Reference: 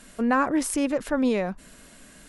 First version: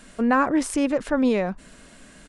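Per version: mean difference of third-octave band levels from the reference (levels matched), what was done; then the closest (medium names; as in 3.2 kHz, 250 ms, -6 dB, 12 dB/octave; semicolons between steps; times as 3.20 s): 1.0 dB: treble shelf 5.2 kHz -4.5 dB; resampled via 22.05 kHz; trim +2.5 dB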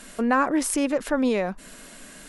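2.5 dB: in parallel at 0 dB: compression, threshold -33 dBFS, peak gain reduction 14.5 dB; on the sum: peaking EQ 72 Hz -11.5 dB 1.8 oct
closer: first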